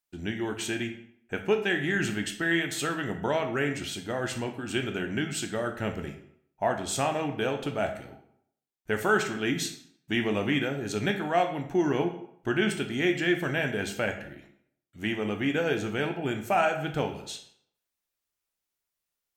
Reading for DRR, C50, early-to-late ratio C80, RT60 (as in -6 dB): 5.0 dB, 9.5 dB, 13.0 dB, 0.65 s